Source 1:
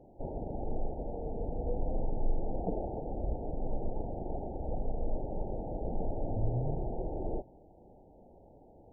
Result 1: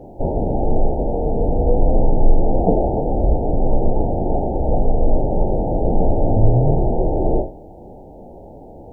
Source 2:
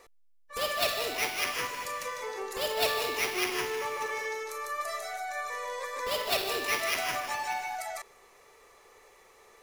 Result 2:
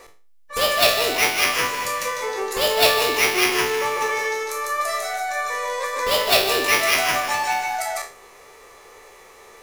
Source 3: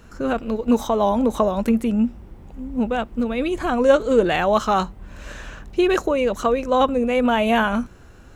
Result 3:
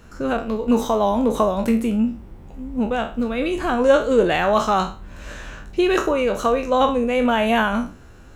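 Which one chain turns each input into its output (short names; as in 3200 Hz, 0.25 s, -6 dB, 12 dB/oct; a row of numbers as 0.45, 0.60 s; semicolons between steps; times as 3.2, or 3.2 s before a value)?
spectral trails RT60 0.36 s; match loudness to -20 LUFS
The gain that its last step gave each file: +17.0, +10.0, -0.5 dB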